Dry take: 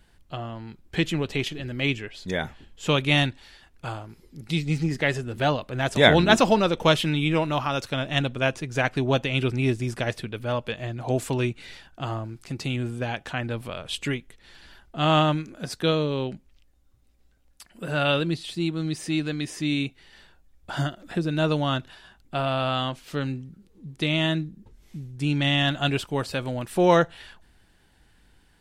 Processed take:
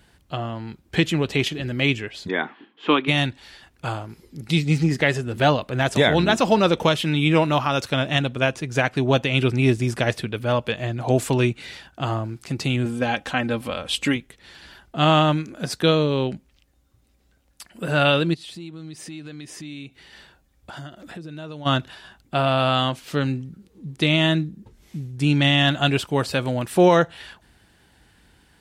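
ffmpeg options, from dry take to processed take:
ffmpeg -i in.wav -filter_complex "[0:a]asplit=3[link_01][link_02][link_03];[link_01]afade=type=out:start_time=2.27:duration=0.02[link_04];[link_02]highpass=frequency=240:width=0.5412,highpass=frequency=240:width=1.3066,equalizer=frequency=300:width_type=q:width=4:gain=5,equalizer=frequency=570:width_type=q:width=4:gain=-9,equalizer=frequency=1100:width_type=q:width=4:gain=5,equalizer=frequency=2700:width_type=q:width=4:gain=-3,lowpass=frequency=3200:width=0.5412,lowpass=frequency=3200:width=1.3066,afade=type=in:start_time=2.27:duration=0.02,afade=type=out:start_time=3.07:duration=0.02[link_05];[link_03]afade=type=in:start_time=3.07:duration=0.02[link_06];[link_04][link_05][link_06]amix=inputs=3:normalize=0,asettb=1/sr,asplit=3[link_07][link_08][link_09];[link_07]atrim=end=12.854[link_10];[link_08]atrim=start=12.85:end=14.16,asetpts=PTS-STARTPTS,afade=type=in:duration=0.004:curve=qsin,afade=type=out:start_time=1.306:duration=0.004:curve=qsin,aecho=1:1:3.8:0.52,atrim=end_sample=57771[link_11];[link_09]atrim=start=14.156[link_12];[link_10][link_11]acrossfade=duration=0.004:curve1=hsin:curve2=qsin[link_13];[link_13][link_12]acrossfade=duration=0.004:curve1=qsin:curve2=hsin,asplit=3[link_14][link_15][link_16];[link_14]afade=type=out:start_time=18.33:duration=0.02[link_17];[link_15]acompressor=threshold=-42dB:ratio=4:attack=3.2:release=140:knee=1:detection=peak,afade=type=in:start_time=18.33:duration=0.02,afade=type=out:start_time=21.65:duration=0.02[link_18];[link_16]afade=type=in:start_time=21.65:duration=0.02[link_19];[link_17][link_18][link_19]amix=inputs=3:normalize=0,asettb=1/sr,asplit=3[link_20][link_21][link_22];[link_20]atrim=end=22.584[link_23];[link_21]atrim=start=22.58:end=23,asetpts=PTS-STARTPTS,afade=type=in:duration=0.004:curve=qsin,afade=type=out:start_time=0.416:duration=0.004:curve=qsin,highshelf=frequency=10000:gain=5.5[link_24];[link_22]atrim=start=22.996[link_25];[link_23][link_24]acrossfade=duration=0.004:curve1=hsin:curve2=qsin[link_26];[link_26][link_25]acrossfade=duration=0.004:curve1=qsin:curve2=hsin,highpass=58,alimiter=limit=-11dB:level=0:latency=1:release=418,volume=5.5dB" out.wav

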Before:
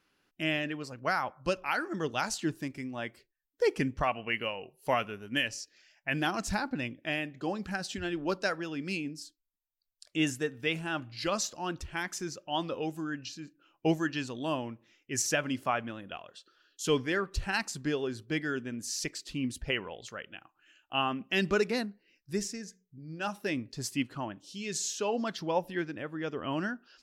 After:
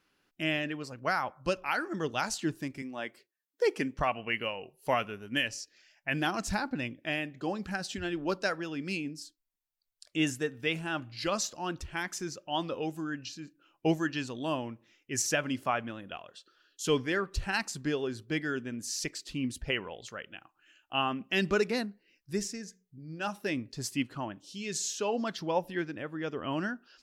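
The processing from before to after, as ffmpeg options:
ffmpeg -i in.wav -filter_complex "[0:a]asettb=1/sr,asplit=3[link_01][link_02][link_03];[link_01]atrim=end=2.824[link_04];[link_02]atrim=start=2.82:end=3.99,asetpts=PTS-STARTPTS,afade=type=in:duration=0.004:curve=qsin,afade=type=out:start_time=1.166:duration=0.004:curve=qsin,highpass=230[link_05];[link_03]atrim=start=3.986[link_06];[link_04][link_05]acrossfade=duration=0.004:curve1=hsin:curve2=qsin[link_07];[link_07][link_06]acrossfade=duration=0.004:curve1=qsin:curve2=hsin" out.wav

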